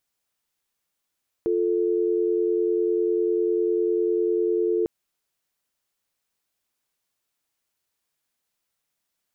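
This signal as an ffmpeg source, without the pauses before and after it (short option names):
-f lavfi -i "aevalsrc='0.075*(sin(2*PI*350*t)+sin(2*PI*440*t))':d=3.4:s=44100"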